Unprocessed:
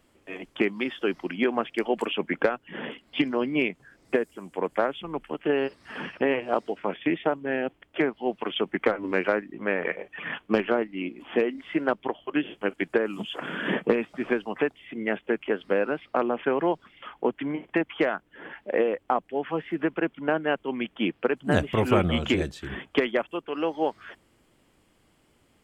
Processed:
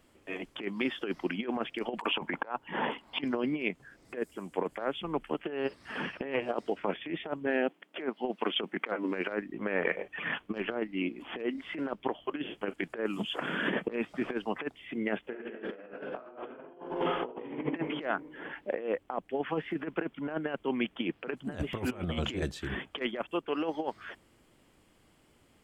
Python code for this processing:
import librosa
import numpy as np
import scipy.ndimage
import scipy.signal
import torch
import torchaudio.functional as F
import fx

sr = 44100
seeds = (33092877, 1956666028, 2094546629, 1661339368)

y = fx.peak_eq(x, sr, hz=920.0, db=14.5, octaves=0.77, at=(1.99, 3.22))
y = fx.brickwall_highpass(y, sr, low_hz=160.0, at=(7.47, 9.29))
y = fx.reverb_throw(y, sr, start_s=15.28, length_s=2.29, rt60_s=1.4, drr_db=-8.0)
y = fx.over_compress(y, sr, threshold_db=-27.0, ratio=-0.5)
y = y * 10.0 ** (-5.0 / 20.0)